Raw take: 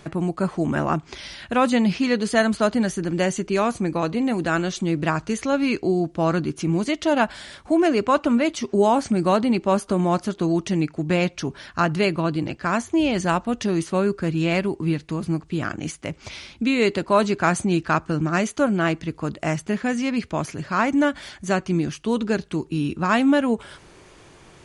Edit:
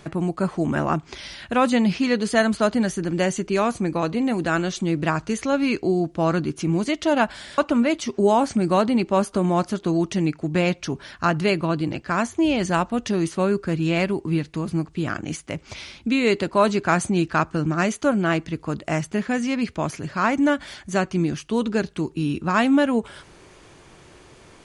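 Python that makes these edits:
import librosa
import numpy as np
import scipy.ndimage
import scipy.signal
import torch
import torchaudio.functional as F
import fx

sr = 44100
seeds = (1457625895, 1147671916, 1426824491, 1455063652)

y = fx.edit(x, sr, fx.cut(start_s=7.58, length_s=0.55), tone=tone)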